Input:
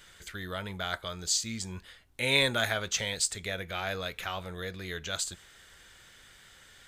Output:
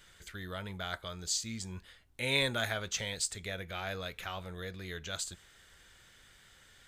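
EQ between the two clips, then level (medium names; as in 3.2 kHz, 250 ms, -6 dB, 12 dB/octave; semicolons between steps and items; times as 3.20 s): bass shelf 210 Hz +3.5 dB; -5.0 dB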